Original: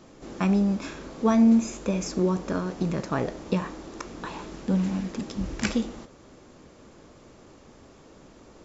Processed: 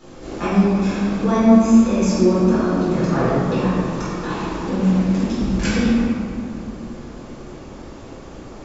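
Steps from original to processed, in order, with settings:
in parallel at −0.5 dB: downward compressor, threshold −38 dBFS, peak gain reduction 20.5 dB
on the sum: convolution reverb RT60 2.5 s, pre-delay 4 ms, DRR −11 dB
level −5.5 dB

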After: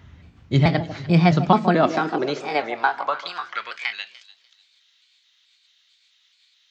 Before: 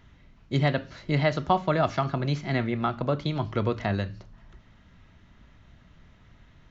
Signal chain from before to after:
pitch shifter gated in a rhythm +2.5 semitones, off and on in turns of 218 ms
delay that swaps between a low-pass and a high-pass 148 ms, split 980 Hz, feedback 54%, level −11 dB
high-pass filter sweep 79 Hz → 3,800 Hz, 0:00.75–0:04.36
level +5 dB

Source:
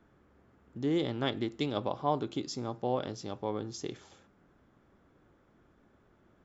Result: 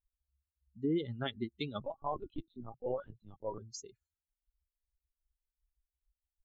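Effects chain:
spectral dynamics exaggerated over time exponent 3
brickwall limiter −28.5 dBFS, peak gain reduction 9 dB
0:01.80–0:03.58: linear-prediction vocoder at 8 kHz pitch kept
level +3.5 dB

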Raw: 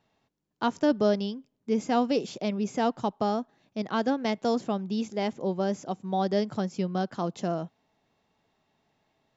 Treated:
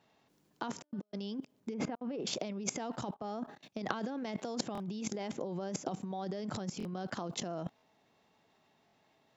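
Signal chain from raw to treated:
output level in coarse steps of 22 dB
0:01.74–0:02.27: low-pass filter 2,000 Hz 12 dB per octave
compressor whose output falls as the input rises −48 dBFS, ratio −0.5
high-pass filter 150 Hz 6 dB per octave
buffer that repeats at 0:04.73/0:06.78/0:07.76/0:08.86, samples 1,024, times 2
0:03.14–0:03.91: multiband upward and downward expander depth 100%
level +8.5 dB

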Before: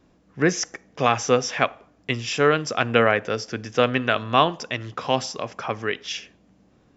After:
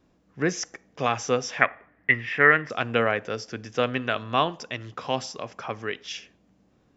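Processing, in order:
0:01.61–0:02.70: low-pass with resonance 1,900 Hz, resonance Q 11
level −5 dB

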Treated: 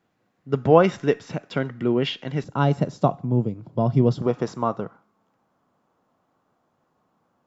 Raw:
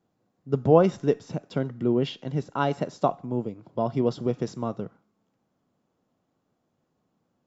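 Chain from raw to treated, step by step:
parametric band 2,000 Hz +11 dB 1.8 octaves, from 0:02.44 120 Hz, from 0:04.22 1,100 Hz
level +1 dB

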